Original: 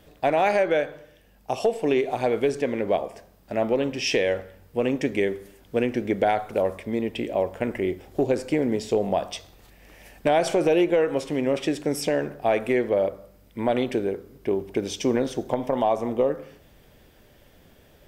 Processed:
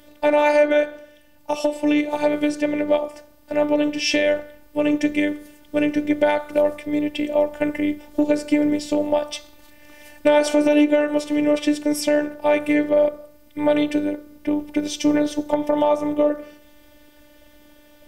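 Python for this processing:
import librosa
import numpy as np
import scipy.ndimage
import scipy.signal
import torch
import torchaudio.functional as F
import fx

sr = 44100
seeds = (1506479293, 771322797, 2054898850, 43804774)

y = fx.robotise(x, sr, hz=296.0)
y = y * librosa.db_to_amplitude(6.5)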